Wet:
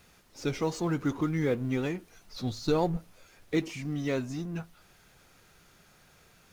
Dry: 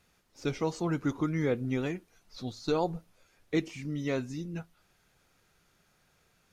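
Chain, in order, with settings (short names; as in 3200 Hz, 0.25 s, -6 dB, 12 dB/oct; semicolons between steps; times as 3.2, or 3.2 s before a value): G.711 law mismatch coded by mu; 2.43–2.97 low shelf 180 Hz +8 dB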